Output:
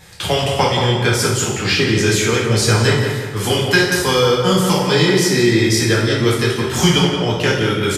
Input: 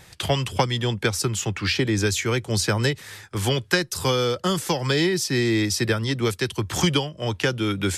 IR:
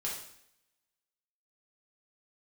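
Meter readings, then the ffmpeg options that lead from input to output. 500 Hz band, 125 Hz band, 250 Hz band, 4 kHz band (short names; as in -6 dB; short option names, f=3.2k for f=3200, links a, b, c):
+9.0 dB, +7.5 dB, +7.5 dB, +8.0 dB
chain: -filter_complex "[0:a]asplit=2[a][b];[b]adelay=176,lowpass=f=2.4k:p=1,volume=-4.5dB,asplit=2[c][d];[d]adelay=176,lowpass=f=2.4k:p=1,volume=0.47,asplit=2[e][f];[f]adelay=176,lowpass=f=2.4k:p=1,volume=0.47,asplit=2[g][h];[h]adelay=176,lowpass=f=2.4k:p=1,volume=0.47,asplit=2[i][j];[j]adelay=176,lowpass=f=2.4k:p=1,volume=0.47,asplit=2[k][l];[l]adelay=176,lowpass=f=2.4k:p=1,volume=0.47[m];[a][c][e][g][i][k][m]amix=inputs=7:normalize=0[n];[1:a]atrim=start_sample=2205[o];[n][o]afir=irnorm=-1:irlink=0,volume=4.5dB"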